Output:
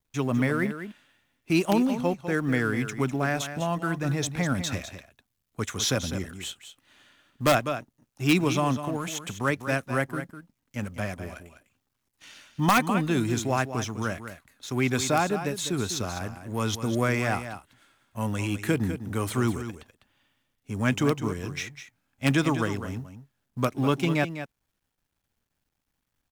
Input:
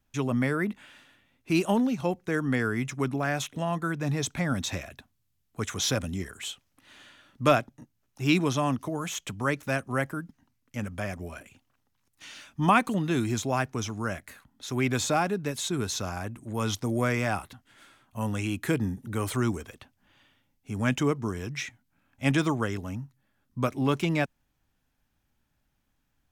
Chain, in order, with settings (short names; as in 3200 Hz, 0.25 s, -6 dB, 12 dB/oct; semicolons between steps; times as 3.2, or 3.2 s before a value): G.711 law mismatch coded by A; echo 0.201 s -10.5 dB; in parallel at -3 dB: wrapped overs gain 12.5 dB; on the sum: gain -2.5 dB